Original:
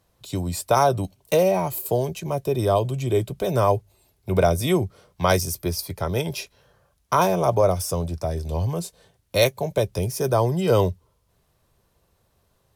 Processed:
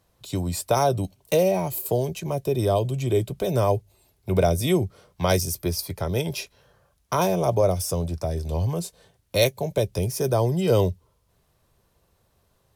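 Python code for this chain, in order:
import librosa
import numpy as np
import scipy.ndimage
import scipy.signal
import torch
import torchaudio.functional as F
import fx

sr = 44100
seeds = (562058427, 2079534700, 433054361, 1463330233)

y = fx.dynamic_eq(x, sr, hz=1200.0, q=1.1, threshold_db=-36.0, ratio=4.0, max_db=-7)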